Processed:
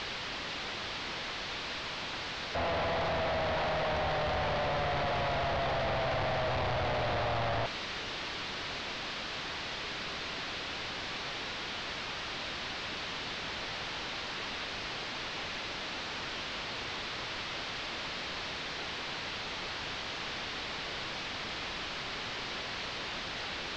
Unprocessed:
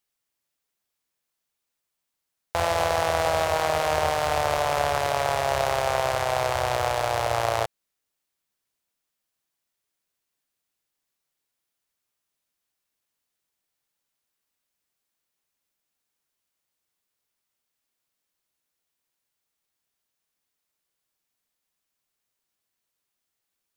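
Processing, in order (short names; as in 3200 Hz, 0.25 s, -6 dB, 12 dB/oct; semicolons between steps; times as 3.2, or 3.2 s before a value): infinite clipping; inverse Chebyshev low-pass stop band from 9700 Hz, stop band 50 dB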